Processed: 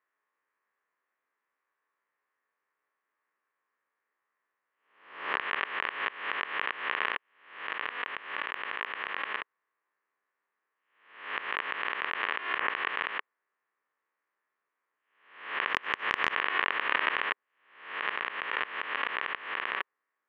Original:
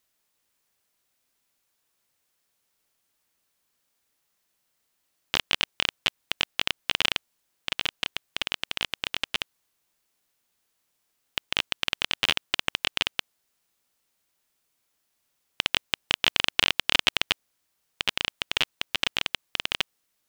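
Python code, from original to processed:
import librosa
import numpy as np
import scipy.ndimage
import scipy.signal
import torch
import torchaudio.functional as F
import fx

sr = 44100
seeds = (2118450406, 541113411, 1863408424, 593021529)

y = fx.spec_swells(x, sr, rise_s=0.62)
y = fx.cabinet(y, sr, low_hz=400.0, low_slope=12, high_hz=2100.0, hz=(420.0, 690.0, 1100.0, 1800.0), db=(4, -4, 9, 8))
y = fx.transient(y, sr, attack_db=3, sustain_db=-11, at=(15.68, 16.34), fade=0.02)
y = y * librosa.db_to_amplitude(-5.0)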